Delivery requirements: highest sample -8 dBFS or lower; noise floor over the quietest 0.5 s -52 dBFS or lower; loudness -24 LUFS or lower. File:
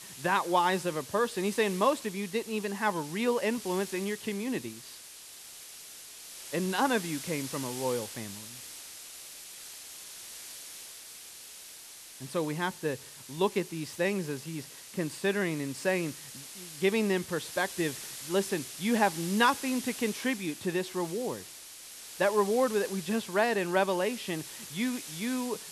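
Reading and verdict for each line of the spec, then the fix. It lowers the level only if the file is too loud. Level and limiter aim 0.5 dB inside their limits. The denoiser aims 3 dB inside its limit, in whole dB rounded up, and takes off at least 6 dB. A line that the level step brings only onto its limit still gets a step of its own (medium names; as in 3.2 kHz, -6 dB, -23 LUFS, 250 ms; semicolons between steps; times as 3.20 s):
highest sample -10.5 dBFS: pass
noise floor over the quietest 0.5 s -48 dBFS: fail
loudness -31.0 LUFS: pass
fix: noise reduction 7 dB, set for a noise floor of -48 dBFS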